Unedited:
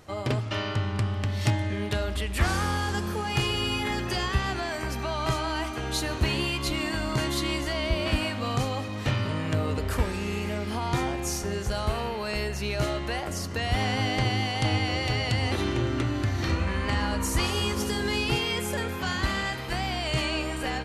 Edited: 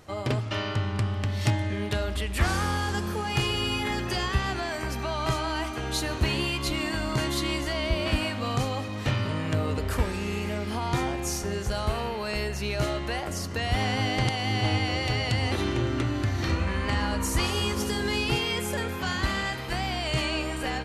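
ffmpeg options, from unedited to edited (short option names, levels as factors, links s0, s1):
-filter_complex "[0:a]asplit=3[s0][s1][s2];[s0]atrim=end=14.272[s3];[s1]atrim=start=14.268:end=14.642,asetpts=PTS-STARTPTS,areverse[s4];[s2]atrim=start=14.638[s5];[s3][s4]acrossfade=d=0.004:c1=hsin:c2=hsin[s6];[s6][s5]acrossfade=d=0.004:c1=hsin:c2=hsin"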